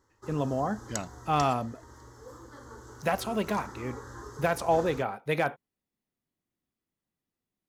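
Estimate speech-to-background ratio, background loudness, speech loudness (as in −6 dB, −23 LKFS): 14.0 dB, −44.5 LKFS, −30.5 LKFS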